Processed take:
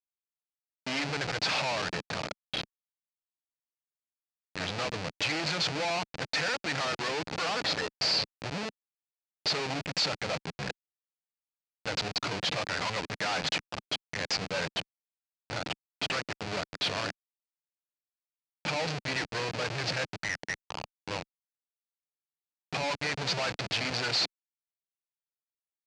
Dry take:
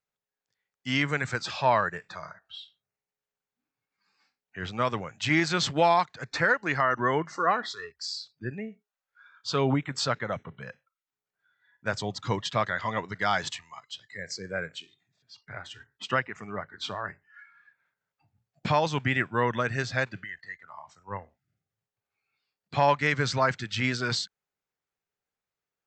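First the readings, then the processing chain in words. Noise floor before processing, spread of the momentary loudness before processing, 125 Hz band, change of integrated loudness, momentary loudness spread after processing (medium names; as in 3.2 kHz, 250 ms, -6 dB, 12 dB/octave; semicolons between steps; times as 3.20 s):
under -85 dBFS, 18 LU, -6.5 dB, -3.5 dB, 9 LU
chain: compression 12:1, threshold -27 dBFS, peak gain reduction 11 dB; Schmitt trigger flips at -38 dBFS; cabinet simulation 180–6600 Hz, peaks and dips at 230 Hz -9 dB, 370 Hz -7 dB, 1.1 kHz -4 dB, 2.5 kHz +5 dB, 4.5 kHz +6 dB; trim +7.5 dB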